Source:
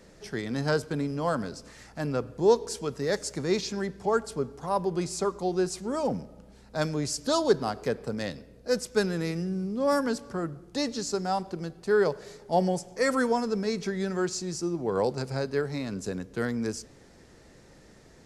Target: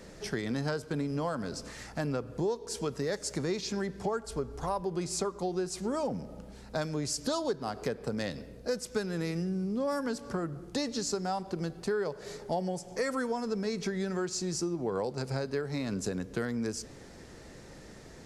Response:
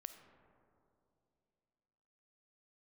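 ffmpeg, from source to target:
-filter_complex "[0:a]asplit=3[a][b][c];[a]afade=t=out:st=4.24:d=0.02[d];[b]asubboost=boost=6:cutoff=67,afade=t=in:st=4.24:d=0.02,afade=t=out:st=4.81:d=0.02[e];[c]afade=t=in:st=4.81:d=0.02[f];[d][e][f]amix=inputs=3:normalize=0,acompressor=threshold=-34dB:ratio=6,volume=4.5dB"

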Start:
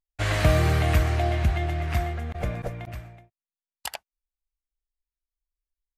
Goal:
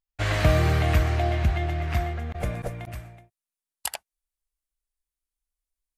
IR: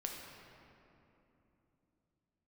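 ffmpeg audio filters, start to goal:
-af "asetnsamples=n=441:p=0,asendcmd='2.4 equalizer g 8',equalizer=f=9.9k:w=1.1:g=-4.5"

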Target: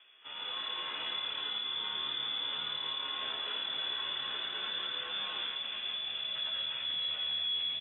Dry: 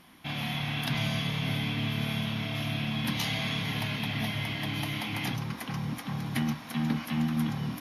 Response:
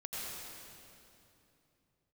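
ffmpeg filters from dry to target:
-filter_complex "[1:a]atrim=start_sample=2205[a];[0:a][a]afir=irnorm=-1:irlink=0,areverse,acompressor=mode=upward:threshold=-41dB:ratio=2.5,areverse,lowpass=f=3.1k:t=q:w=0.5098,lowpass=f=3.1k:t=q:w=0.6013,lowpass=f=3.1k:t=q:w=0.9,lowpass=f=3.1k:t=q:w=2.563,afreqshift=-3600,alimiter=limit=-20.5dB:level=0:latency=1:release=267,tiltshelf=f=660:g=-7,aeval=exprs='(tanh(17.8*val(0)+0.4)-tanh(0.4))/17.8':c=same,highpass=250,equalizer=f=1.8k:w=0.36:g=-4.5,asplit=2[b][c];[c]adelay=14,volume=-4dB[d];[b][d]amix=inputs=2:normalize=0,volume=-5.5dB" -ar 24000 -c:a aac -b:a 16k

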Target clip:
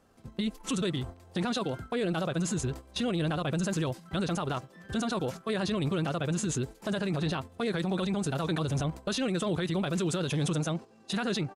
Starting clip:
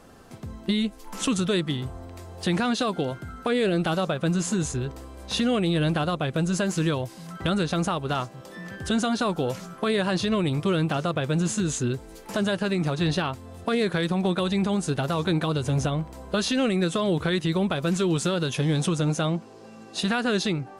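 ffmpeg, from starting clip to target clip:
-af "atempo=1.8,alimiter=limit=-21dB:level=0:latency=1:release=21,agate=range=-11dB:threshold=-36dB:ratio=16:detection=peak,volume=-2dB"

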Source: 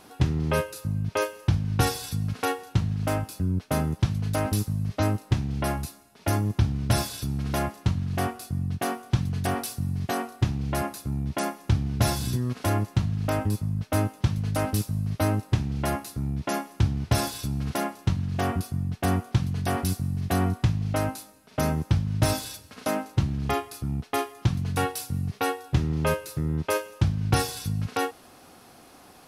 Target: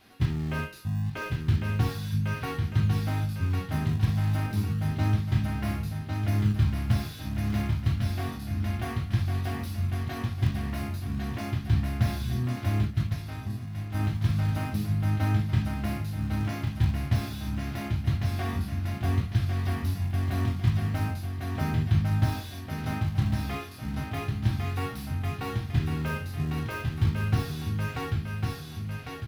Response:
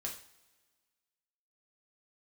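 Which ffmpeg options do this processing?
-filter_complex "[0:a]aecho=1:1:1102|2204|3306|4408|5510:0.562|0.242|0.104|0.0447|0.0192,asettb=1/sr,asplit=3[a][b][c];[a]atrim=end=12.854[d];[b]atrim=start=12.85:end=13.99,asetpts=PTS-STARTPTS,afade=t=in:d=0.004:c=qsin,afade=t=out:st=1.136:d=0.004:c=qsin,agate=range=-8dB:threshold=-21dB:ratio=16:detection=peak[e];[c]atrim=start=13.986[f];[d][e]acrossfade=d=0.004:c1=hsin:c2=qsin[g];[g][f]acrossfade=d=0.004:c1=qsin:c2=hsin[h];[1:a]atrim=start_sample=2205,atrim=end_sample=3969[i];[h][i]afir=irnorm=-1:irlink=0,acrossover=split=1400[j][k];[k]asoftclip=type=tanh:threshold=-37dB[l];[j][l]amix=inputs=2:normalize=0,equalizer=f=500:t=o:w=1:g=-9,equalizer=f=1k:t=o:w=1:g=-4,equalizer=f=2k:t=o:w=1:g=5,equalizer=f=4k:t=o:w=1:g=4,equalizer=f=8k:t=o:w=1:g=-11,asplit=2[m][n];[n]acrusher=samples=28:mix=1:aa=0.000001:lfo=1:lforange=44.8:lforate=0.31,volume=-11dB[o];[m][o]amix=inputs=2:normalize=0,volume=-3.5dB"

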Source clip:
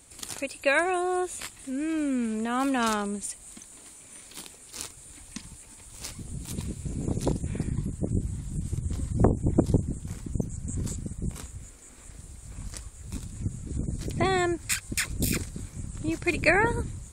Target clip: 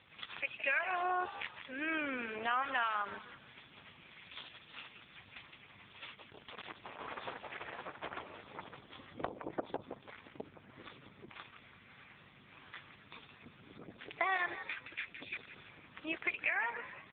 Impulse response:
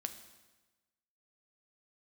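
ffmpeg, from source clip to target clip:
-filter_complex "[0:a]asplit=3[a][b][c];[a]afade=t=out:st=6.14:d=0.02[d];[b]acrusher=bits=4:mix=0:aa=0.5,afade=t=in:st=6.14:d=0.02,afade=t=out:st=8.73:d=0.02[e];[c]afade=t=in:st=8.73:d=0.02[f];[d][e][f]amix=inputs=3:normalize=0,highpass=1k,asoftclip=type=hard:threshold=-13.5dB,acompressor=threshold=-36dB:ratio=10,aeval=exprs='val(0)+0.001*(sin(2*PI*50*n/s)+sin(2*PI*2*50*n/s)/2+sin(2*PI*3*50*n/s)/3+sin(2*PI*4*50*n/s)/4+sin(2*PI*5*50*n/s)/5)':c=same,asplit=5[g][h][i][j][k];[h]adelay=167,afreqshift=82,volume=-10dB[l];[i]adelay=334,afreqshift=164,volume=-17.7dB[m];[j]adelay=501,afreqshift=246,volume=-25.5dB[n];[k]adelay=668,afreqshift=328,volume=-33.2dB[o];[g][l][m][n][o]amix=inputs=5:normalize=0,asoftclip=type=tanh:threshold=-24.5dB,volume=7.5dB" -ar 8000 -c:a libopencore_amrnb -b:a 4750

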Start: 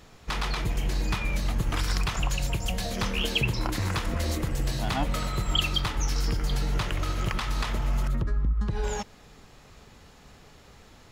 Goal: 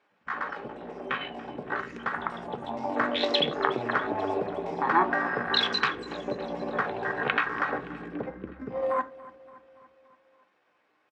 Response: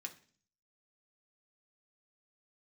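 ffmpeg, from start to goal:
-filter_complex "[0:a]afwtdn=0.0282,dynaudnorm=f=230:g=21:m=6.5dB,asetrate=55563,aresample=44100,atempo=0.793701,highpass=440,lowpass=2k,aecho=1:1:285|570|855|1140|1425:0.112|0.0662|0.0391|0.023|0.0136,asplit=2[a][b];[1:a]atrim=start_sample=2205,atrim=end_sample=4410[c];[b][c]afir=irnorm=-1:irlink=0,volume=5.5dB[d];[a][d]amix=inputs=2:normalize=0"

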